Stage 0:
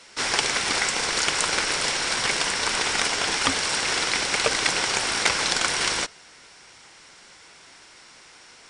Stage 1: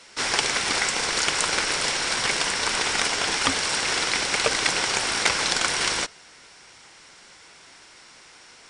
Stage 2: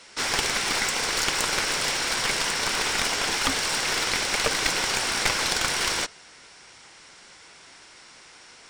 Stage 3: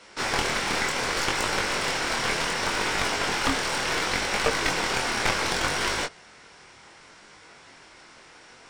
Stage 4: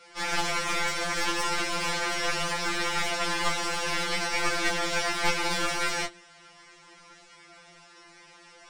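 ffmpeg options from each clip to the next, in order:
-af anull
-af "aeval=exprs='clip(val(0),-1,0.0631)':c=same"
-af "flanger=delay=19.5:depth=6.6:speed=0.68,highshelf=f=2.7k:g=-9.5,volume=6dB"
-af "bandreject=f=57.93:t=h:w=4,bandreject=f=115.86:t=h:w=4,bandreject=f=173.79:t=h:w=4,bandreject=f=231.72:t=h:w=4,bandreject=f=289.65:t=h:w=4,bandreject=f=347.58:t=h:w=4,bandreject=f=405.51:t=h:w=4,bandreject=f=463.44:t=h:w=4,bandreject=f=521.37:t=h:w=4,afftfilt=real='re*2.83*eq(mod(b,8),0)':imag='im*2.83*eq(mod(b,8),0)':win_size=2048:overlap=0.75"

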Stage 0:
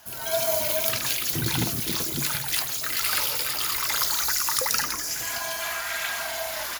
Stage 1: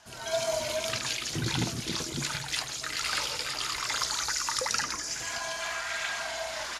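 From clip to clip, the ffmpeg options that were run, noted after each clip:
-af "lowpass=f=8.2k:w=0.5412,lowpass=f=8.2k:w=1.3066,volume=-3dB"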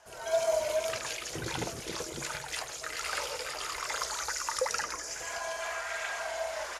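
-af "equalizer=f=125:t=o:w=1:g=-7,equalizer=f=250:t=o:w=1:g=-9,equalizer=f=500:t=o:w=1:g=9,equalizer=f=4k:t=o:w=1:g=-7,volume=-2dB"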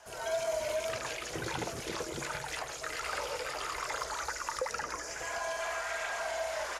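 -filter_complex "[0:a]acrossover=split=390|1300|2600[a][b][c][d];[a]acompressor=threshold=-43dB:ratio=4[e];[b]acompressor=threshold=-37dB:ratio=4[f];[c]acompressor=threshold=-44dB:ratio=4[g];[d]acompressor=threshold=-46dB:ratio=4[h];[e][f][g][h]amix=inputs=4:normalize=0,asplit=2[i][j];[j]asoftclip=type=tanh:threshold=-35dB,volume=-7.5dB[k];[i][k]amix=inputs=2:normalize=0"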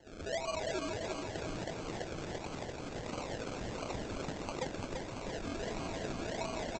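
-af "aresample=16000,acrusher=samples=13:mix=1:aa=0.000001:lfo=1:lforange=7.8:lforate=1.5,aresample=44100,aecho=1:1:340|680|1020|1360|1700|2040|2380|2720:0.596|0.345|0.2|0.116|0.0674|0.0391|0.0227|0.0132,volume=-4.5dB"

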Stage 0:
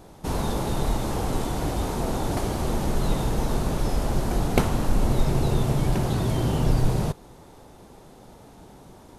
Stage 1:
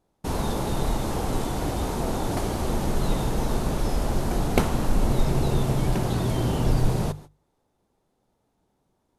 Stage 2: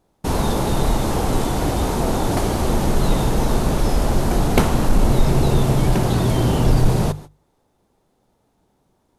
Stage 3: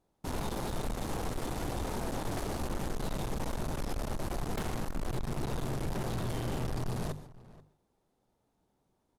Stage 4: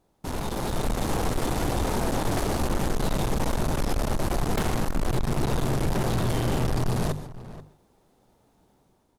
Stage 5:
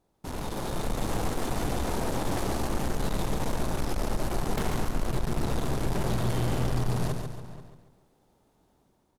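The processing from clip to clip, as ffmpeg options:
-af "agate=range=-24dB:threshold=-40dB:ratio=16:detection=peak,bandreject=f=50:t=h:w=6,bandreject=f=100:t=h:w=6,bandreject=f=150:t=h:w=6"
-af "acontrast=82"
-filter_complex "[0:a]aeval=exprs='(tanh(15.8*val(0)+0.6)-tanh(0.6))/15.8':c=same,asplit=2[a][b];[b]adelay=484,volume=-19dB,highshelf=f=4k:g=-10.9[c];[a][c]amix=inputs=2:normalize=0,volume=-8.5dB"
-filter_complex "[0:a]asplit=2[a][b];[b]alimiter=level_in=14dB:limit=-24dB:level=0:latency=1:release=288,volume=-14dB,volume=1.5dB[c];[a][c]amix=inputs=2:normalize=0,dynaudnorm=f=460:g=3:m=5.5dB,volume=1dB"
-af "aecho=1:1:140|280|420|560|700:0.473|0.199|0.0835|0.0351|0.0147,volume=-4.5dB"

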